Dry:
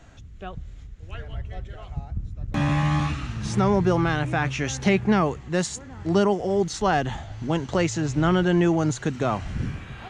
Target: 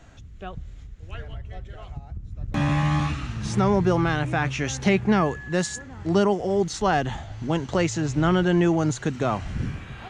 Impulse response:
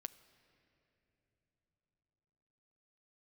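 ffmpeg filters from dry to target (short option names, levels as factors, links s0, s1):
-filter_complex "[0:a]asettb=1/sr,asplit=3[s0][s1][s2];[s0]atrim=end=1.234[s3];[s1]atrim=start=1.23:end=2.32,asetpts=PTS-STARTPTS,afade=t=in:d=0.004:c=qsin,afade=t=out:st=1.086:d=0.004:c=qsin,acompressor=threshold=0.0282:ratio=6[s4];[s2]atrim=start=2.316[s5];[s3][s4]acrossfade=d=0.004:c1=hsin:c2=qsin[s6];[s6][s5]acrossfade=d=0.004:c1=qsin:c2=hsin,asettb=1/sr,asplit=3[s7][s8][s9];[s7]atrim=end=5.144[s10];[s8]atrim=start=5.14:end=5.82,asetpts=PTS-STARTPTS,afade=t=in:d=0.004:c=qsin,afade=t=out:st=0.676:d=0.004:c=qsin,aeval=exprs='val(0)+0.0126*sin(2*PI*1700*n/s)':c=same[s11];[s9]atrim=start=5.816[s12];[s10][s11]acrossfade=d=0.004:c1=hsin:c2=qsin[s13];[s13][s12]acrossfade=d=0.004:c1=qsin:c2=hsin"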